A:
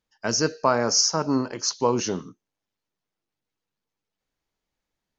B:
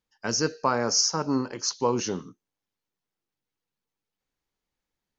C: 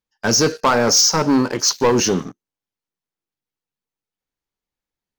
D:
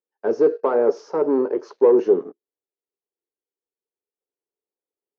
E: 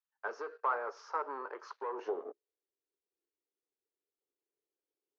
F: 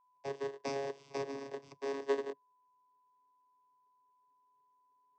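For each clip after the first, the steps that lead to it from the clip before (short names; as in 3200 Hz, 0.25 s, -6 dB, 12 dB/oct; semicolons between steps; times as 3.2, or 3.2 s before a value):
notch 640 Hz, Q 12; gain -2.5 dB
sample leveller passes 3; gain +2.5 dB
ladder band-pass 450 Hz, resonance 65%; gain +7.5 dB
compressor, threshold -18 dBFS, peak gain reduction 8 dB; high-pass sweep 1200 Hz -> 300 Hz, 1.86–2.69; air absorption 50 m; gain -5.5 dB
FFT order left unsorted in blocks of 32 samples; vocoder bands 16, saw 138 Hz; whine 1000 Hz -75 dBFS; gain +5.5 dB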